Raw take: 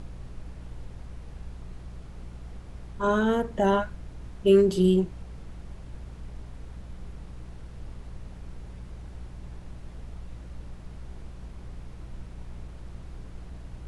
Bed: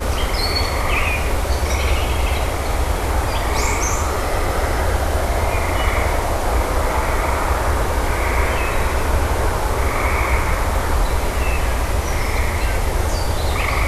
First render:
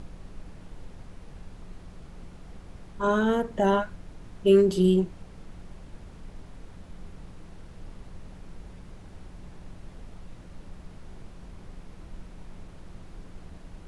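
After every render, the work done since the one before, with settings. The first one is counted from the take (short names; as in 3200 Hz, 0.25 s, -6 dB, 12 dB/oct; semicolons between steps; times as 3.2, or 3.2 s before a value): de-hum 60 Hz, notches 2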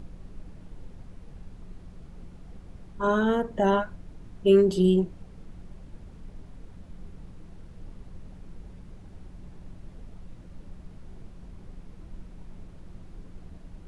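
denoiser 6 dB, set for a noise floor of -47 dBFS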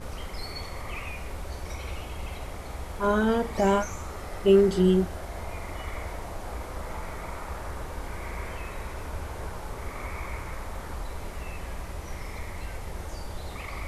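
add bed -18 dB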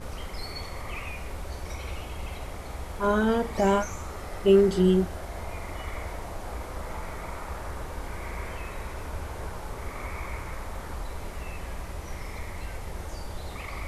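nothing audible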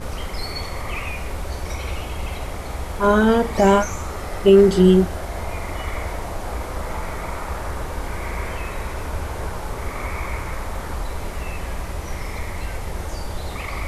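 gain +8 dB; limiter -3 dBFS, peak gain reduction 2.5 dB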